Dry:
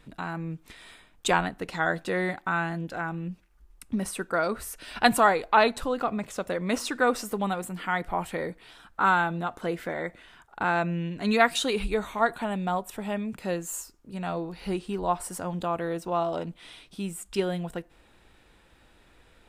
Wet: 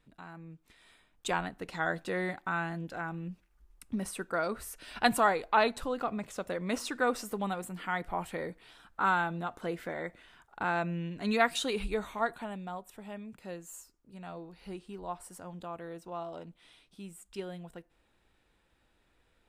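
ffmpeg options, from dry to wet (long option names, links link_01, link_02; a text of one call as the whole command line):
ffmpeg -i in.wav -af "volume=-5.5dB,afade=type=in:start_time=0.69:duration=1.14:silence=0.375837,afade=type=out:start_time=12.05:duration=0.64:silence=0.446684" out.wav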